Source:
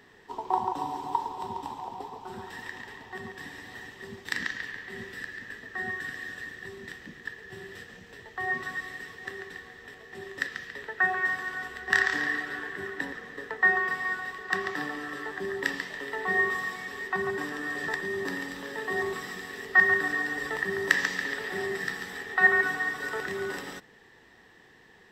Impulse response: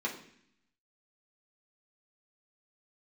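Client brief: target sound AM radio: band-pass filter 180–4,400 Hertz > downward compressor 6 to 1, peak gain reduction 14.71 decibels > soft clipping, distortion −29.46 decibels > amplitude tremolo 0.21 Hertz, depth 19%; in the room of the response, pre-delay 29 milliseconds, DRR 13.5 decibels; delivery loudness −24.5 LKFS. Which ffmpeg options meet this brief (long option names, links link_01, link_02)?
-filter_complex "[0:a]asplit=2[link_01][link_02];[1:a]atrim=start_sample=2205,adelay=29[link_03];[link_02][link_03]afir=irnorm=-1:irlink=0,volume=-18.5dB[link_04];[link_01][link_04]amix=inputs=2:normalize=0,highpass=180,lowpass=4400,acompressor=threshold=-30dB:ratio=6,asoftclip=threshold=-16.5dB,tremolo=f=0.21:d=0.19,volume=12dB"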